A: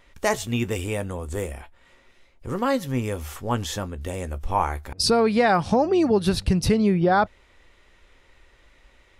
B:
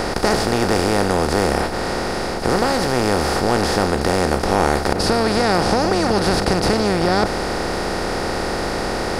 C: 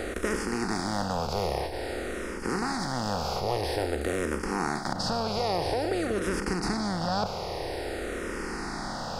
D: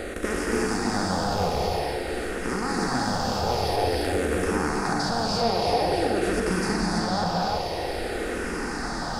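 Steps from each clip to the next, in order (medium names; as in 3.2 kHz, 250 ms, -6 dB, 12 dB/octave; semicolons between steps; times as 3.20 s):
spectral levelling over time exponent 0.2; trim -5 dB
barber-pole phaser -0.5 Hz; trim -8.5 dB
gated-style reverb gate 350 ms rising, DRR -2.5 dB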